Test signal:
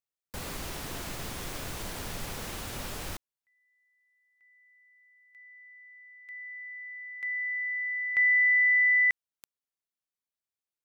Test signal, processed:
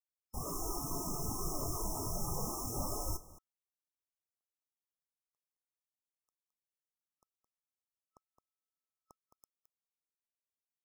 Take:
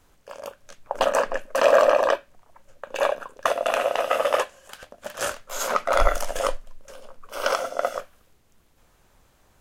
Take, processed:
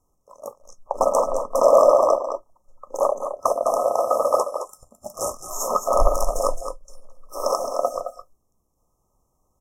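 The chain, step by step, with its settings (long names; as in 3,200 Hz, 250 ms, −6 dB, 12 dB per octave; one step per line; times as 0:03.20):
single-tap delay 216 ms −8.5 dB
noise reduction from a noise print of the clip's start 12 dB
brick-wall band-stop 1,300–5,200 Hz
level +2.5 dB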